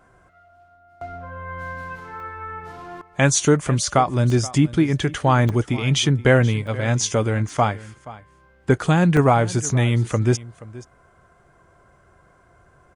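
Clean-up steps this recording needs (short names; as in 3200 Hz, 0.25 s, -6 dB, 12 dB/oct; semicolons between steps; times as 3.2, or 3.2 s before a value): interpolate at 2.2/4.3/5.49/6.67/7.49/9.17, 1.1 ms; inverse comb 0.477 s -18.5 dB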